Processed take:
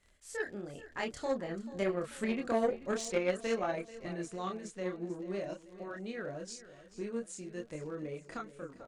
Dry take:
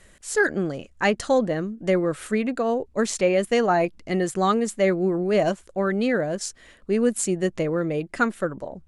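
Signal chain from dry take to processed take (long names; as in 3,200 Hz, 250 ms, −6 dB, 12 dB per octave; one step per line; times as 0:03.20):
source passing by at 0:02.45, 18 m/s, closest 14 metres
camcorder AGC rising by 6.5 dB per second
high-shelf EQ 6,200 Hz +11.5 dB
in parallel at −1.5 dB: downward compressor 4 to 1, threshold −34 dBFS, peak gain reduction 13.5 dB
on the sum: multi-voice chorus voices 6, 0.82 Hz, delay 28 ms, depth 2.2 ms
surface crackle 53 per second −38 dBFS
high-frequency loss of the air 72 metres
on a send: repeating echo 437 ms, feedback 48%, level −15 dB
on the sum: harmonic generator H 3 −17 dB, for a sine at −14 dBFS
level −4.5 dB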